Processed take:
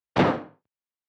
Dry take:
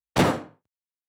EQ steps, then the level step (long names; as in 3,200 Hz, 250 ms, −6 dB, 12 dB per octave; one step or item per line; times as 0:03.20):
high-frequency loss of the air 230 metres
low-shelf EQ 80 Hz −12 dB
+1.5 dB